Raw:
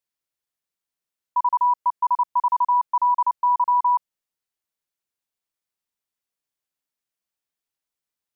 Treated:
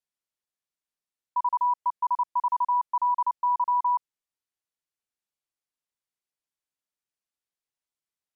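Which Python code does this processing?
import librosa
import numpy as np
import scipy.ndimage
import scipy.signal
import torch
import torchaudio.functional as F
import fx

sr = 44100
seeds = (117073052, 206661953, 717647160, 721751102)

y = scipy.signal.sosfilt(scipy.signal.butter(2, 12000.0, 'lowpass', fs=sr, output='sos'), x)
y = y * 10.0 ** (-5.0 / 20.0)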